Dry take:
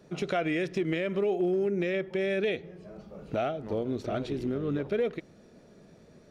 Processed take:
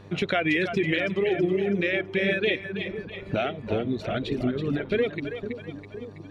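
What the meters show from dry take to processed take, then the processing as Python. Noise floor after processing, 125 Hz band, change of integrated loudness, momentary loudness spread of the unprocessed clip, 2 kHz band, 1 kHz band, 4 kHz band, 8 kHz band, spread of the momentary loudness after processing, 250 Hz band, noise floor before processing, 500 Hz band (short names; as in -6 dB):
-44 dBFS, +5.0 dB, +3.5 dB, 9 LU, +9.5 dB, +3.0 dB, +9.5 dB, n/a, 12 LU, +4.0 dB, -56 dBFS, +2.5 dB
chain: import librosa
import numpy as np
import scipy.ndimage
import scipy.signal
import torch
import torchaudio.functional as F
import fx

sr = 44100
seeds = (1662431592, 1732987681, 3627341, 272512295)

y = fx.echo_split(x, sr, split_hz=450.0, low_ms=512, high_ms=327, feedback_pct=52, wet_db=-6)
y = fx.dereverb_blind(y, sr, rt60_s=1.7)
y = fx.low_shelf(y, sr, hz=430.0, db=8.0)
y = fx.dmg_buzz(y, sr, base_hz=100.0, harmonics=12, level_db=-48.0, tilt_db=-6, odd_only=False)
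y = fx.band_shelf(y, sr, hz=2500.0, db=10.0, octaves=1.7)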